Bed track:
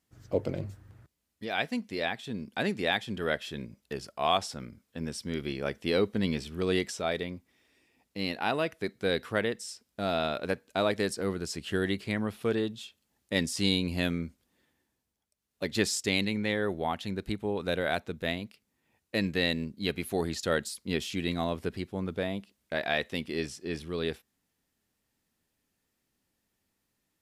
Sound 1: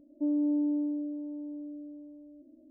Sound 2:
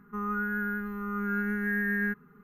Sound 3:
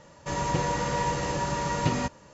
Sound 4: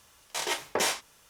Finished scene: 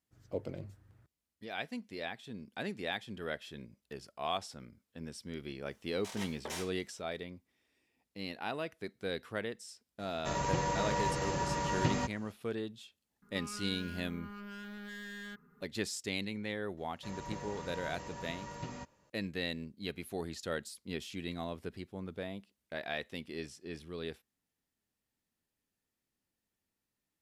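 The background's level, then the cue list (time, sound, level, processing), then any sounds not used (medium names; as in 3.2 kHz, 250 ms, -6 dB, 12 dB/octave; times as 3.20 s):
bed track -9 dB
5.70 s: add 4 -14.5 dB
9.99 s: add 3 -5.5 dB
13.22 s: add 2 -8 dB + saturation -36 dBFS
16.77 s: add 3 -17 dB
not used: 1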